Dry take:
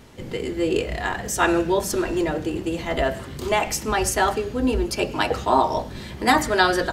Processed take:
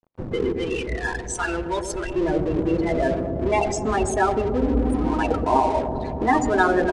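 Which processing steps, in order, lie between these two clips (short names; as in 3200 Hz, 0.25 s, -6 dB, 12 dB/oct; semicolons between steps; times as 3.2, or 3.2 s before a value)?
0.52–2.16 bell 310 Hz -13.5 dB 3 oct; 4.69–5.13 spectral repair 210–6900 Hz both; in parallel at -2 dB: negative-ratio compressor -28 dBFS, ratio -1; on the sum: loudest bins only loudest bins 16; crossover distortion -34.5 dBFS; dark delay 0.122 s, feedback 80%, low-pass 570 Hz, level -5 dB; on a send at -24 dB: reverb, pre-delay 3 ms; on the sum: downsampling 22050 Hz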